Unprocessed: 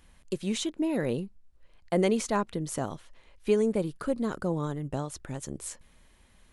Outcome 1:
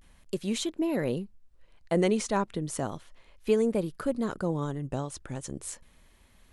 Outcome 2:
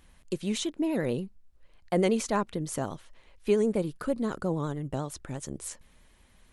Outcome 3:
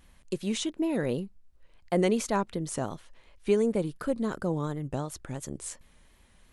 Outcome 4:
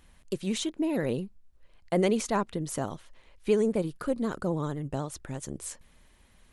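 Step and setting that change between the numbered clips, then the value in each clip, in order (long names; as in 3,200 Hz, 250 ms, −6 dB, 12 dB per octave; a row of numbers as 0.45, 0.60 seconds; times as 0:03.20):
pitch vibrato, speed: 0.35, 11, 2.8, 16 Hertz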